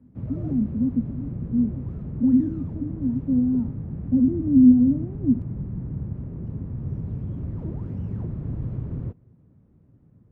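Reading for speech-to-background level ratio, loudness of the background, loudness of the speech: 10.5 dB, −32.5 LKFS, −22.0 LKFS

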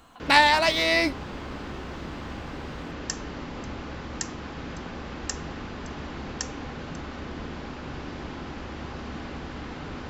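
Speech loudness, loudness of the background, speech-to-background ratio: −20.0 LKFS, −36.5 LKFS, 16.5 dB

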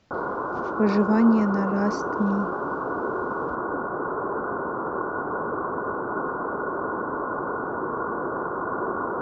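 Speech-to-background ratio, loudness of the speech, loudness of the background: 5.5 dB, −23.0 LKFS, −28.5 LKFS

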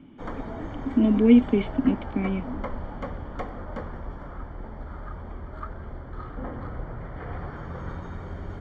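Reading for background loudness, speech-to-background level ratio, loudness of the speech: −37.5 LKFS, 15.5 dB, −22.0 LKFS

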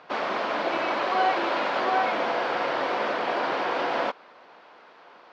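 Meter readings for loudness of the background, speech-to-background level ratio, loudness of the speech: −27.0 LKFS, −3.0 dB, −30.0 LKFS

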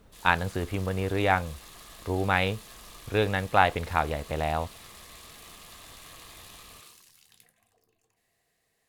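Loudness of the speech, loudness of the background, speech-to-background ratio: −27.5 LKFS, −47.0 LKFS, 19.5 dB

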